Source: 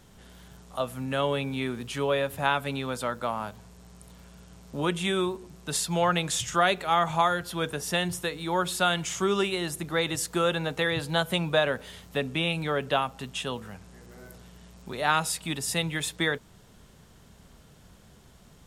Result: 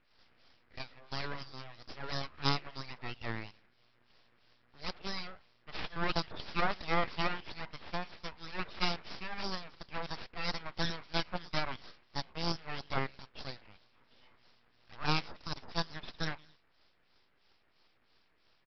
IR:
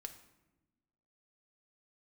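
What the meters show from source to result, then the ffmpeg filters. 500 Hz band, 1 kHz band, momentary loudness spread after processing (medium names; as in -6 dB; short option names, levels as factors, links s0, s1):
-15.0 dB, -11.0 dB, 13 LU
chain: -filter_complex "[0:a]highpass=870,asplit=3[s0][s1][s2];[s1]adelay=110,afreqshift=72,volume=0.0794[s3];[s2]adelay=220,afreqshift=144,volume=0.0269[s4];[s0][s3][s4]amix=inputs=3:normalize=0,aeval=exprs='0.299*(cos(1*acos(clip(val(0)/0.299,-1,1)))-cos(1*PI/2))+0.119*(cos(4*acos(clip(val(0)/0.299,-1,1)))-cos(4*PI/2))+0.0266*(cos(6*acos(clip(val(0)/0.299,-1,1)))-cos(6*PI/2))':c=same,acrossover=split=1300[s5][s6];[s5]aeval=exprs='val(0)*(1-1/2+1/2*cos(2*PI*3*n/s))':c=same[s7];[s6]aeval=exprs='val(0)*(1-1/2-1/2*cos(2*PI*3*n/s))':c=same[s8];[s7][s8]amix=inputs=2:normalize=0,aresample=11025,aeval=exprs='abs(val(0))':c=same,aresample=44100"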